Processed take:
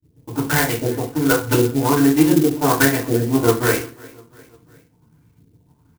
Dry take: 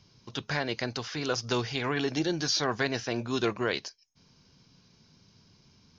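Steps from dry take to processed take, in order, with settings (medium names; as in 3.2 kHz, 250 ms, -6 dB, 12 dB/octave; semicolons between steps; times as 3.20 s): local Wiener filter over 9 samples; expander -57 dBFS; bass shelf 160 Hz +6.5 dB; hum notches 50/100/150/200/250/300/350 Hz; transient shaper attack +3 dB, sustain -11 dB; LFO low-pass saw up 1.3 Hz 330–3500 Hz; in parallel at -6 dB: crossover distortion -45 dBFS; on the sum: distance through air 190 m; on a send: feedback delay 351 ms, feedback 51%, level -23 dB; on the sum: FDN reverb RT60 0.36 s, low-frequency decay 1.25×, high-frequency decay 0.95×, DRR -9.5 dB; sampling jitter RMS 0.074 ms; trim -4 dB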